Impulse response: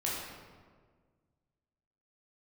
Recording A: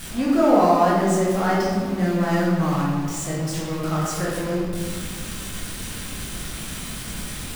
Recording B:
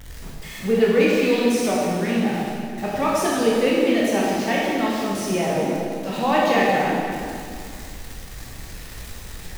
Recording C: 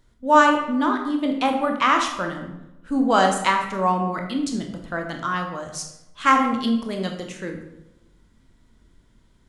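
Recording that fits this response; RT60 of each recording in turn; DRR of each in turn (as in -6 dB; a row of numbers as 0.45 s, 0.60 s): A; 1.7 s, 2.3 s, 0.90 s; -6.0 dB, -5.5 dB, 3.0 dB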